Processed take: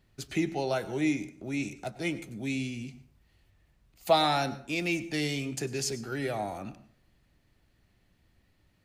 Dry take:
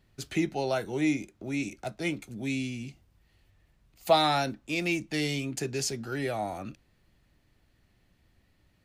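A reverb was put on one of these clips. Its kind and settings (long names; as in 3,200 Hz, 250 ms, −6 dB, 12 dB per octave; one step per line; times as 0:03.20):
dense smooth reverb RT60 0.55 s, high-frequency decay 0.6×, pre-delay 85 ms, DRR 15 dB
level −1 dB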